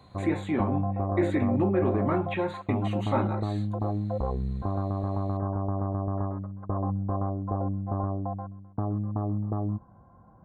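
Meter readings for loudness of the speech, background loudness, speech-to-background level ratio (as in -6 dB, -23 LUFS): -29.5 LUFS, -31.0 LUFS, 1.5 dB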